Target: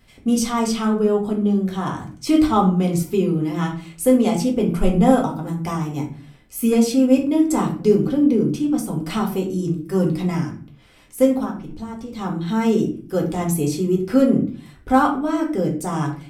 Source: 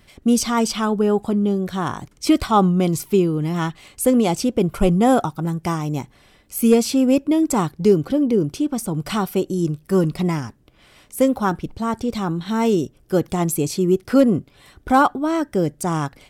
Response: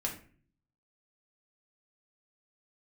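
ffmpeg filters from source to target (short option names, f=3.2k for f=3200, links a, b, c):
-filter_complex "[0:a]asettb=1/sr,asplit=3[a][b][c];[a]atrim=end=11.434[d];[b]atrim=start=11.43:end=12.19,asetpts=PTS-STARTPTS,afade=t=in:d=0.004:c=qsin,afade=t=out:st=0.756:d=0.004:c=qsin,acompressor=threshold=-28dB:ratio=4[e];[c]atrim=start=12.186[f];[d][e]acrossfade=d=0.004:c1=hsin:c2=qsin[g];[g][f]acrossfade=d=0.004:c1=qsin:c2=hsin[h];[1:a]atrim=start_sample=2205,afade=t=out:st=0.44:d=0.01,atrim=end_sample=19845[i];[h][i]afir=irnorm=-1:irlink=0,volume=-4.5dB"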